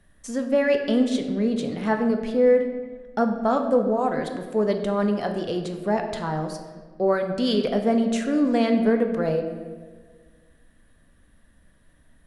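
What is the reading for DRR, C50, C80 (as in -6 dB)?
4.5 dB, 7.5 dB, 9.0 dB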